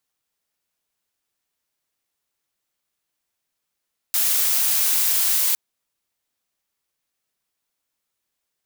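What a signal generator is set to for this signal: noise blue, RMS -19.5 dBFS 1.41 s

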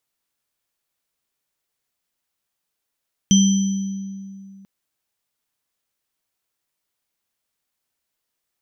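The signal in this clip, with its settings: sine partials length 1.34 s, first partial 195 Hz, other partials 3160/5990 Hz, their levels -9.5/-7 dB, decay 2.52 s, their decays 1.02/1.42 s, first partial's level -10 dB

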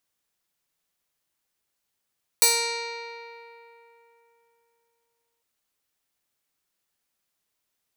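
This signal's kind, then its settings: plucked string A#4, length 3.00 s, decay 3.26 s, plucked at 0.27, bright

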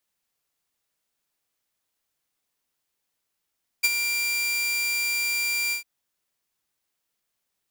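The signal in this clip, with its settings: ADSR saw 2370 Hz, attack 16 ms, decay 36 ms, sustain -8 dB, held 1.89 s, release 0.112 s -13 dBFS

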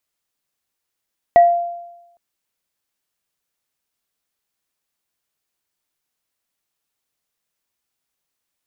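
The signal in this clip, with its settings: sine partials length 0.81 s, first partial 692 Hz, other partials 1930 Hz, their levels -17 dB, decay 0.96 s, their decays 0.25 s, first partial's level -4 dB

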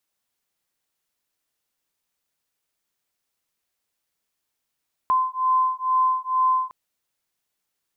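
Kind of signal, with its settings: beating tones 1030 Hz, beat 2.2 Hz, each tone -21.5 dBFS 1.61 s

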